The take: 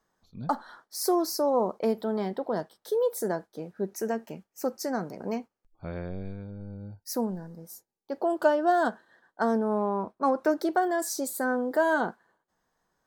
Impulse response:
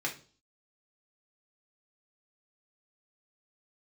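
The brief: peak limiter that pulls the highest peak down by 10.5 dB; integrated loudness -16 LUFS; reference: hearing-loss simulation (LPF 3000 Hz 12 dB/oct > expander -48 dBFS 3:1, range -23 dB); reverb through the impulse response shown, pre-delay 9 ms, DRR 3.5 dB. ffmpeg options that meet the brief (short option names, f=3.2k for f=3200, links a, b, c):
-filter_complex "[0:a]alimiter=limit=-20dB:level=0:latency=1,asplit=2[a][b];[1:a]atrim=start_sample=2205,adelay=9[c];[b][c]afir=irnorm=-1:irlink=0,volume=-8.5dB[d];[a][d]amix=inputs=2:normalize=0,lowpass=3k,agate=range=-23dB:threshold=-48dB:ratio=3,volume=14dB"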